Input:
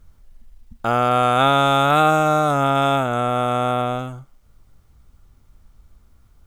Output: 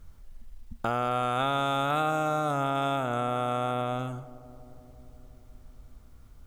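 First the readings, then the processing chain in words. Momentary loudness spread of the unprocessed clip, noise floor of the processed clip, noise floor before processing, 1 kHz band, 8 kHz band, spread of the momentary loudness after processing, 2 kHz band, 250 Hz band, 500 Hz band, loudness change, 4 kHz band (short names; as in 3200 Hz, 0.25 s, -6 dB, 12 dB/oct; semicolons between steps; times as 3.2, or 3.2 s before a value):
9 LU, -53 dBFS, -54 dBFS, -10.5 dB, -10.5 dB, 8 LU, -10.5 dB, -9.5 dB, -10.0 dB, -10.5 dB, -11.0 dB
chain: compressor 2.5:1, threshold -30 dBFS, peak gain reduction 12 dB; darkening echo 0.177 s, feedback 83%, low-pass 1400 Hz, level -18 dB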